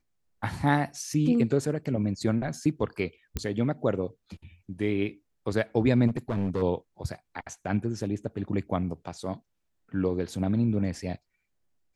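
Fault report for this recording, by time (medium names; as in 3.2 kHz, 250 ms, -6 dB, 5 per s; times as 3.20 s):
3.37 s: pop -15 dBFS
6.07–6.63 s: clipped -23.5 dBFS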